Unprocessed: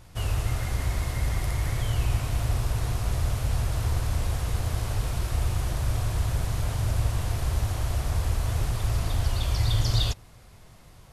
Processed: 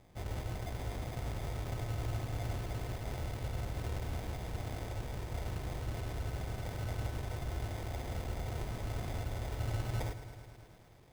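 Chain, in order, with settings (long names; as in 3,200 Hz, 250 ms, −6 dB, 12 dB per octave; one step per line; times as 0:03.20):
Bessel low-pass filter 2,300 Hz, order 4
low-shelf EQ 120 Hz −11 dB
sample-rate reduction 1,400 Hz, jitter 0%
feedback echo at a low word length 108 ms, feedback 80%, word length 9 bits, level −12.5 dB
level −5.5 dB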